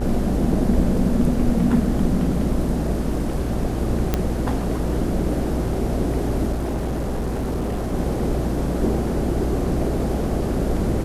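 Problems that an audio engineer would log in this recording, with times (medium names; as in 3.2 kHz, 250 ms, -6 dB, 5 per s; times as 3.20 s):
buzz 60 Hz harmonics 30 -26 dBFS
4.14 s: pop -6 dBFS
6.52–7.95 s: clipped -20.5 dBFS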